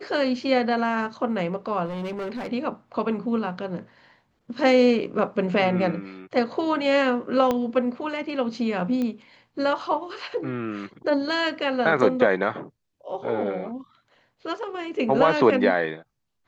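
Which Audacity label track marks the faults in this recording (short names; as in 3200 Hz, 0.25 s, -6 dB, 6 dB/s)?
1.850000	2.530000	clipped -27.5 dBFS
7.510000	7.510000	pop -11 dBFS
9.020000	9.020000	pop -17 dBFS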